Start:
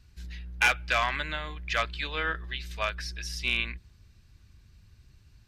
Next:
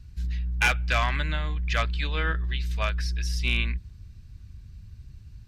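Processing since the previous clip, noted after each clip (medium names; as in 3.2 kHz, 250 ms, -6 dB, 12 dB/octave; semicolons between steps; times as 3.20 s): tone controls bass +12 dB, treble +1 dB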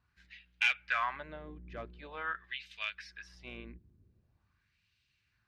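wah-wah 0.45 Hz 320–2900 Hz, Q 2.2; trim -2 dB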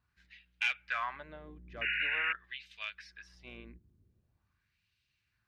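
painted sound noise, 1.81–2.33 s, 1.4–2.9 kHz -30 dBFS; trim -3 dB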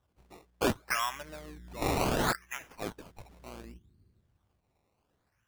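decimation with a swept rate 19×, swing 100% 0.68 Hz; trim +4 dB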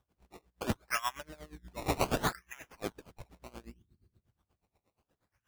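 logarithmic tremolo 8.4 Hz, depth 20 dB; trim +2.5 dB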